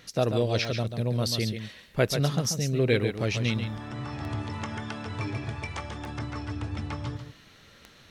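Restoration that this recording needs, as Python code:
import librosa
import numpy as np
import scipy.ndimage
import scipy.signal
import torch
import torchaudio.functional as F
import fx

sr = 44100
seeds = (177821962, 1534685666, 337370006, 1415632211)

y = fx.fix_declick_ar(x, sr, threshold=10.0)
y = fx.fix_echo_inverse(y, sr, delay_ms=139, level_db=-8.0)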